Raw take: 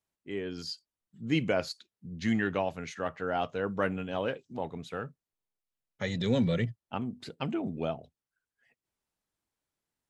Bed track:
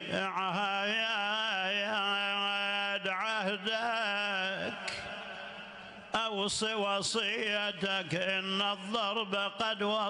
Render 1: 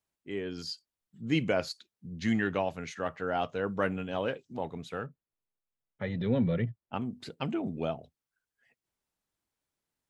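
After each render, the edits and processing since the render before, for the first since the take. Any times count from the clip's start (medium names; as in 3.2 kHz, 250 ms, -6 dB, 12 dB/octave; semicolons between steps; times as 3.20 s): 5.06–6.94 s: distance through air 440 m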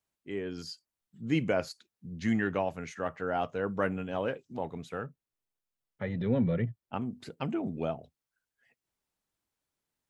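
dynamic bell 3.8 kHz, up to -7 dB, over -55 dBFS, Q 1.4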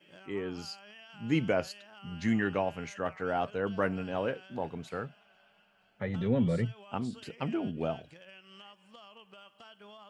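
add bed track -21 dB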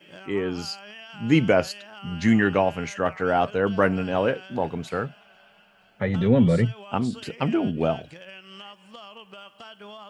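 trim +9.5 dB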